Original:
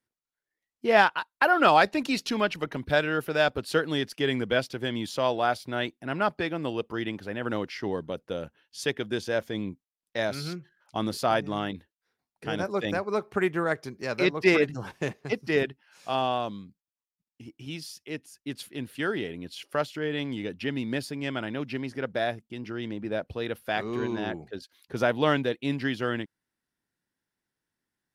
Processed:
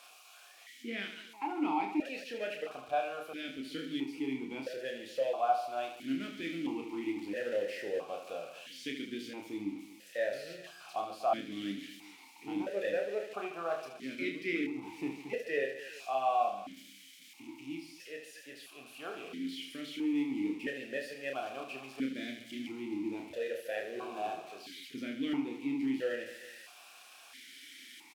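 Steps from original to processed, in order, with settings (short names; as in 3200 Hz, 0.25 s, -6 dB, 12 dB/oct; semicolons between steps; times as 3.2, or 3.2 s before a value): switching spikes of -21.5 dBFS; vocal rider within 3 dB 0.5 s; on a send: reverse bouncing-ball echo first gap 30 ms, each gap 1.5×, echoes 5; on the sum: vowel sequencer 1.5 Hz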